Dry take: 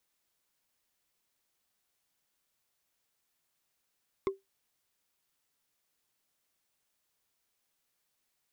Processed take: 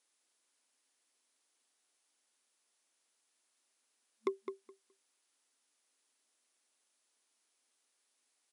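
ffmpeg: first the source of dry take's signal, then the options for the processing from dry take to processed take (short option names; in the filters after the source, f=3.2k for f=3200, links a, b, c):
-f lavfi -i "aevalsrc='0.0708*pow(10,-3*t/0.17)*sin(2*PI*389*t)+0.0355*pow(10,-3*t/0.05)*sin(2*PI*1072.5*t)+0.0178*pow(10,-3*t/0.022)*sin(2*PI*2102.2*t)+0.00891*pow(10,-3*t/0.012)*sin(2*PI*3474.9*t)+0.00447*pow(10,-3*t/0.008)*sin(2*PI*5189.3*t)':d=0.45:s=44100"
-filter_complex "[0:a]afftfilt=real='re*between(b*sr/4096,220,11000)':imag='im*between(b*sr/4096,220,11000)':win_size=4096:overlap=0.75,highshelf=f=5.9k:g=6.5,asplit=2[a][b];[b]adelay=210,lowpass=f=3.5k:p=1,volume=-8dB,asplit=2[c][d];[d]adelay=210,lowpass=f=3.5k:p=1,volume=0.16,asplit=2[e][f];[f]adelay=210,lowpass=f=3.5k:p=1,volume=0.16[g];[c][e][g]amix=inputs=3:normalize=0[h];[a][h]amix=inputs=2:normalize=0"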